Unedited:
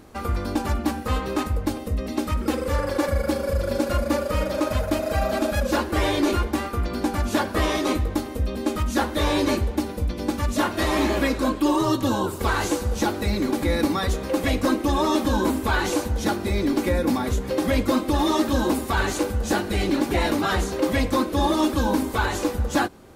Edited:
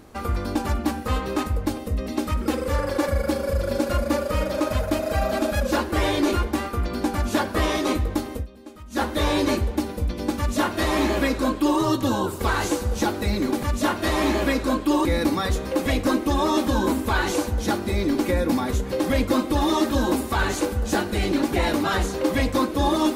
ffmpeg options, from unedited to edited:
-filter_complex "[0:a]asplit=5[s0][s1][s2][s3][s4];[s0]atrim=end=8.47,asetpts=PTS-STARTPTS,afade=t=out:st=8.35:d=0.12:silence=0.133352[s5];[s1]atrim=start=8.47:end=8.9,asetpts=PTS-STARTPTS,volume=0.133[s6];[s2]atrim=start=8.9:end=13.632,asetpts=PTS-STARTPTS,afade=t=in:d=0.12:silence=0.133352[s7];[s3]atrim=start=10.378:end=11.802[s8];[s4]atrim=start=13.628[s9];[s5][s6][s7]concat=n=3:v=0:a=1[s10];[s10][s8]acrossfade=d=0.004:c1=hsin:c2=hsin[s11];[s11][s9]acrossfade=d=0.004:c1=hsin:c2=hsin"

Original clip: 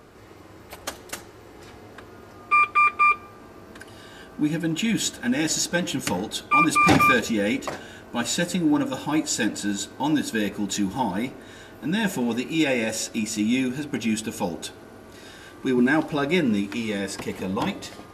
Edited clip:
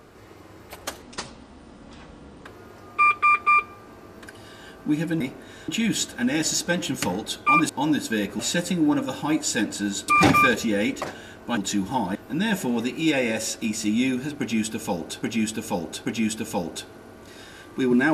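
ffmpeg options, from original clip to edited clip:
-filter_complex "[0:a]asplit=12[s0][s1][s2][s3][s4][s5][s6][s7][s8][s9][s10][s11];[s0]atrim=end=1.024[s12];[s1]atrim=start=1.02:end=1.98,asetpts=PTS-STARTPTS,asetrate=29547,aresample=44100,atrim=end_sample=63188,asetpts=PTS-STARTPTS[s13];[s2]atrim=start=1.976:end=4.732[s14];[s3]atrim=start=11.198:end=11.682[s15];[s4]atrim=start=4.728:end=6.742[s16];[s5]atrim=start=9.918:end=10.622[s17];[s6]atrim=start=8.228:end=9.922[s18];[s7]atrim=start=6.738:end=8.232[s19];[s8]atrim=start=10.618:end=11.202[s20];[s9]atrim=start=11.678:end=14.752[s21];[s10]atrim=start=13.918:end=14.752[s22];[s11]atrim=start=13.918[s23];[s12][s13]acrossfade=d=0.004:c1=hsin:c2=hsin[s24];[s24][s14]acrossfade=d=0.004:c1=hsin:c2=hsin[s25];[s25][s15]acrossfade=d=0.004:c1=hsin:c2=hsin[s26];[s26][s16]acrossfade=d=0.004:c1=hsin:c2=hsin[s27];[s27][s17]acrossfade=d=0.004:c1=hsin:c2=hsin[s28];[s28][s18]acrossfade=d=0.004:c1=hsin:c2=hsin[s29];[s29][s19]acrossfade=d=0.004:c1=hsin:c2=hsin[s30];[s30][s20]acrossfade=d=0.004:c1=hsin:c2=hsin[s31];[s31][s21]acrossfade=d=0.004:c1=hsin:c2=hsin[s32];[s32][s22]acrossfade=d=0.004:c1=hsin:c2=hsin[s33];[s33][s23]acrossfade=d=0.004:c1=hsin:c2=hsin"

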